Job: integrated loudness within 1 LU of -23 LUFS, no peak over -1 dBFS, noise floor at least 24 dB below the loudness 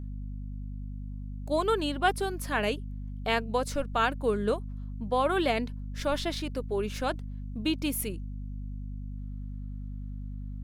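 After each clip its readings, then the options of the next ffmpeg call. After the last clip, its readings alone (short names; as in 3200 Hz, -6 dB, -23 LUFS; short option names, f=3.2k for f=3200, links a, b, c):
hum 50 Hz; harmonics up to 250 Hz; hum level -35 dBFS; loudness -31.5 LUFS; peak -12.0 dBFS; loudness target -23.0 LUFS
-> -af "bandreject=f=50:t=h:w=4,bandreject=f=100:t=h:w=4,bandreject=f=150:t=h:w=4,bandreject=f=200:t=h:w=4,bandreject=f=250:t=h:w=4"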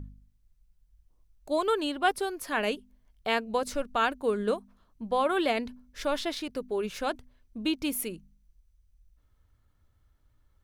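hum none; loudness -30.0 LUFS; peak -12.5 dBFS; loudness target -23.0 LUFS
-> -af "volume=7dB"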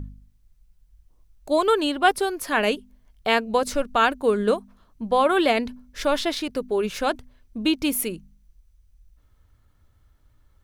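loudness -23.5 LUFS; peak -5.5 dBFS; noise floor -60 dBFS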